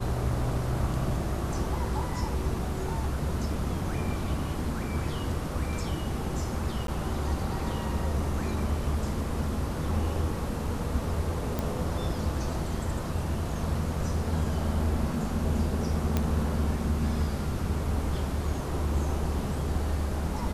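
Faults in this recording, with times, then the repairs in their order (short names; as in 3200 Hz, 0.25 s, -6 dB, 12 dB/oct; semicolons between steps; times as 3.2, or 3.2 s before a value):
6.87–6.88 gap 12 ms
11.59 pop
16.17 pop -12 dBFS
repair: de-click; interpolate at 6.87, 12 ms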